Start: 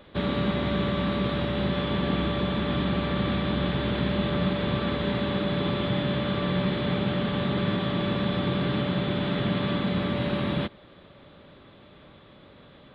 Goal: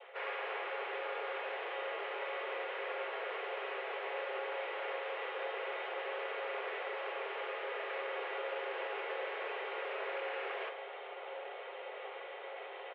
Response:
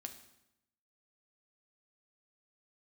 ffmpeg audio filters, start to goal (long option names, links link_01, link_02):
-filter_complex "[0:a]crystalizer=i=7:c=0,areverse,acompressor=threshold=-35dB:ratio=12,areverse,asplit=4[link_01][link_02][link_03][link_04];[link_02]asetrate=22050,aresample=44100,atempo=2,volume=-2dB[link_05];[link_03]asetrate=37084,aresample=44100,atempo=1.18921,volume=0dB[link_06];[link_04]asetrate=88200,aresample=44100,atempo=0.5,volume=-13dB[link_07];[link_01][link_05][link_06][link_07]amix=inputs=4:normalize=0,aeval=exprs='0.0266*(abs(mod(val(0)/0.0266+3,4)-2)-1)':channel_layout=same,adynamicequalizer=threshold=0.002:dfrequency=1400:dqfactor=1.1:tfrequency=1400:tqfactor=1.1:attack=5:release=100:ratio=0.375:range=3:mode=cutabove:tftype=bell,aresample=16000,aeval=exprs='(mod(44.7*val(0)+1,2)-1)/44.7':channel_layout=same,aresample=44100[link_08];[1:a]atrim=start_sample=2205,asetrate=52920,aresample=44100[link_09];[link_08][link_09]afir=irnorm=-1:irlink=0,highpass=frequency=160:width_type=q:width=0.5412,highpass=frequency=160:width_type=q:width=1.307,lowpass=frequency=2400:width_type=q:width=0.5176,lowpass=frequency=2400:width_type=q:width=0.7071,lowpass=frequency=2400:width_type=q:width=1.932,afreqshift=250,volume=7dB"